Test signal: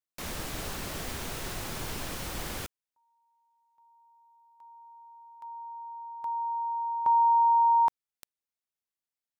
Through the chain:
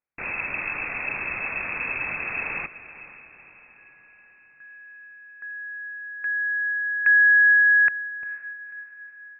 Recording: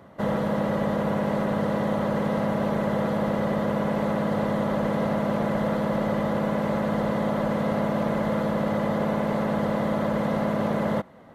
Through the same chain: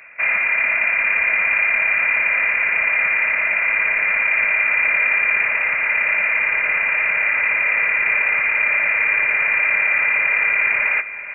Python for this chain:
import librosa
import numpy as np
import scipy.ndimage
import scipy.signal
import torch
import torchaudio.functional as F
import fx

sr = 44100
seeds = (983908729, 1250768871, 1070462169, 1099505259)

y = fx.freq_invert(x, sr, carrier_hz=2600)
y = fx.echo_diffused(y, sr, ms=484, feedback_pct=51, wet_db=-14.5)
y = F.gain(torch.from_numpy(y), 6.5).numpy()